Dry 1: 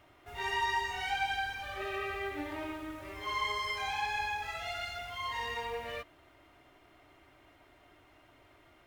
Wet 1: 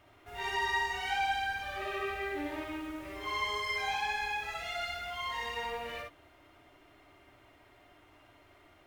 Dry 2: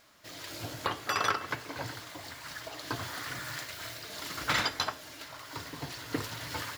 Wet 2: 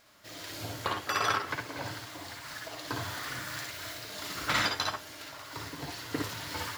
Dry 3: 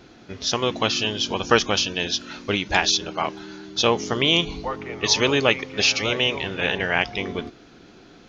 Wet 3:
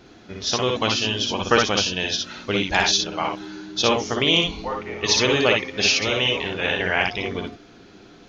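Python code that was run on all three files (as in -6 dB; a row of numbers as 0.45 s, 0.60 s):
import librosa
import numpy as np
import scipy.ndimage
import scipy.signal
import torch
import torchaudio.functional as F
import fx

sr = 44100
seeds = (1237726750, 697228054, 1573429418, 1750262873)

y = fx.room_early_taps(x, sr, ms=(55, 65), db=(-5.5, -5.5))
y = F.gain(torch.from_numpy(y), -1.0).numpy()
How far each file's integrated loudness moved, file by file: +1.0 LU, +1.0 LU, +1.0 LU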